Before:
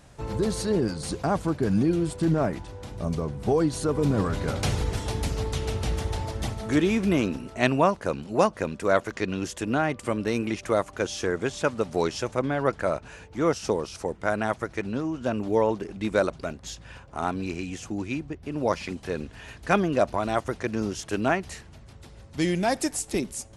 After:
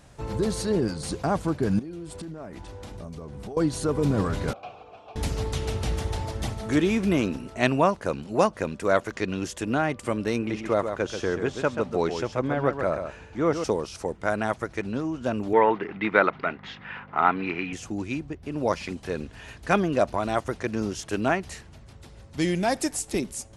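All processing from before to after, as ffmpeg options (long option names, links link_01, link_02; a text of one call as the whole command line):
ffmpeg -i in.wav -filter_complex "[0:a]asettb=1/sr,asplit=3[link_01][link_02][link_03];[link_01]atrim=end=1.794[link_04];[link_02]atrim=start=1.79:end=3.57,asetpts=PTS-STARTPTS,afade=type=in:duration=0.004:curve=qsin,afade=type=out:start_time=1.776:duration=0.004:curve=qsin,equalizer=frequency=130:width_type=o:width=0.44:gain=-6,acompressor=threshold=-34dB:ratio=10:attack=3.2:release=140:knee=1:detection=peak[link_05];[link_03]atrim=start=3.566[link_06];[link_04][link_05]acrossfade=duration=0.004:curve1=hsin:curve2=qsin[link_07];[link_07][link_06]acrossfade=duration=0.004:curve1=qsin:curve2=hsin,asettb=1/sr,asplit=3[link_08][link_09][link_10];[link_08]atrim=end=4.534[link_11];[link_09]atrim=start=4.53:end=5.16,asetpts=PTS-STARTPTS,afade=type=in:duration=0.004:curve=qsin,afade=type=out:start_time=0.626:duration=0.004:curve=qsin,acrossover=split=6100[link_12][link_13];[link_13]acompressor=threshold=-52dB:ratio=4:attack=1:release=60[link_14];[link_12][link_14]amix=inputs=2:normalize=0,asplit=3[link_15][link_16][link_17];[link_15]bandpass=frequency=730:width_type=q:width=8,volume=0dB[link_18];[link_16]bandpass=frequency=1090:width_type=q:width=8,volume=-6dB[link_19];[link_17]bandpass=frequency=2440:width_type=q:width=8,volume=-9dB[link_20];[link_18][link_19][link_20]amix=inputs=3:normalize=0,highshelf=frequency=10000:gain=-11[link_21];[link_10]atrim=start=5.156[link_22];[link_11][link_21]acrossfade=duration=0.004:curve1=hsin:curve2=qsin[link_23];[link_23][link_22]acrossfade=duration=0.004:curve1=qsin:curve2=hsin,asettb=1/sr,asplit=3[link_24][link_25][link_26];[link_24]atrim=end=10.364[link_27];[link_25]atrim=start=10.36:end=13.64,asetpts=PTS-STARTPTS,afade=type=in:duration=0.004:curve=qsin,afade=type=out:start_time=3.276:duration=0.004:curve=qsin,aemphasis=mode=reproduction:type=50kf,aecho=1:1:134:0.422,atrim=end_sample=144648[link_28];[link_26]atrim=start=13.636[link_29];[link_27][link_28]acrossfade=duration=0.004:curve1=hsin:curve2=qsin[link_30];[link_30][link_29]acrossfade=duration=0.004:curve1=qsin:curve2=hsin,asettb=1/sr,asplit=3[link_31][link_32][link_33];[link_31]atrim=end=15.534[link_34];[link_32]atrim=start=15.53:end=17.73,asetpts=PTS-STARTPTS,afade=type=in:duration=0.004:curve=qsin,afade=type=out:start_time=2.196:duration=0.004:curve=qsin,acontrast=40,aeval=exprs='val(0)+0.0178*(sin(2*PI*50*n/s)+sin(2*PI*2*50*n/s)/2+sin(2*PI*3*50*n/s)/3+sin(2*PI*4*50*n/s)/4+sin(2*PI*5*50*n/s)/5)':channel_layout=same,highpass=230,equalizer=frequency=240:width_type=q:width=4:gain=-5,equalizer=frequency=360:width_type=q:width=4:gain=-3,equalizer=frequency=570:width_type=q:width=4:gain=-7,equalizer=frequency=890:width_type=q:width=4:gain=3,equalizer=frequency=1300:width_type=q:width=4:gain=6,equalizer=frequency=2000:width_type=q:width=4:gain=9,lowpass=frequency=3200:width=0.5412,lowpass=frequency=3200:width=1.3066[link_35];[link_33]atrim=start=17.726[link_36];[link_34][link_35]acrossfade=duration=0.004:curve1=hsin:curve2=qsin[link_37];[link_37][link_36]acrossfade=duration=0.004:curve1=qsin:curve2=hsin" out.wav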